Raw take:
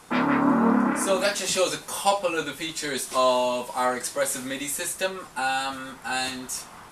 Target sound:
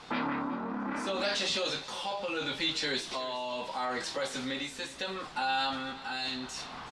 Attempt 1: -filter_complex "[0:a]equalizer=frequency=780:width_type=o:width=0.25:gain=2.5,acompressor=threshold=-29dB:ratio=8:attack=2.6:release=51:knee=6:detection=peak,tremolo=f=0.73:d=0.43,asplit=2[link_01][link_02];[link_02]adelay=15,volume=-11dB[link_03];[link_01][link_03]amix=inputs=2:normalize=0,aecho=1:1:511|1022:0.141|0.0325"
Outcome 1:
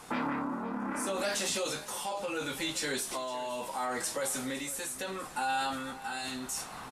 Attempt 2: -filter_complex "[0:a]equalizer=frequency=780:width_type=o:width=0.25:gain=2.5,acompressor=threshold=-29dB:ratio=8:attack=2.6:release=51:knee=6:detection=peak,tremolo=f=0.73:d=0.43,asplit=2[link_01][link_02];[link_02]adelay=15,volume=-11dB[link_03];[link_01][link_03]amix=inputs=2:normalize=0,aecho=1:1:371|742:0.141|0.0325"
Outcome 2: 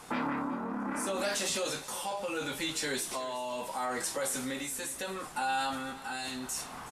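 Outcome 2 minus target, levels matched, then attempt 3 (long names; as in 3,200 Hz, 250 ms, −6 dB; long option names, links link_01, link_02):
4,000 Hz band −4.5 dB
-filter_complex "[0:a]equalizer=frequency=780:width_type=o:width=0.25:gain=2.5,acompressor=threshold=-29dB:ratio=8:attack=2.6:release=51:knee=6:detection=peak,lowpass=frequency=4100:width_type=q:width=2,tremolo=f=0.73:d=0.43,asplit=2[link_01][link_02];[link_02]adelay=15,volume=-11dB[link_03];[link_01][link_03]amix=inputs=2:normalize=0,aecho=1:1:371|742:0.141|0.0325"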